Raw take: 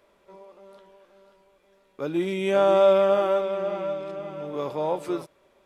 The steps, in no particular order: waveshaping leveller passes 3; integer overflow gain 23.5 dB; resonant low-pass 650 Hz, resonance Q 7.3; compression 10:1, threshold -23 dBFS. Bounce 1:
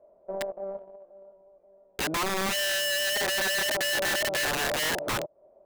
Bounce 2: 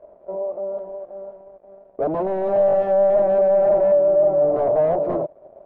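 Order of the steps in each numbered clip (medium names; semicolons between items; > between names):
waveshaping leveller > resonant low-pass > compression > integer overflow; compression > integer overflow > waveshaping leveller > resonant low-pass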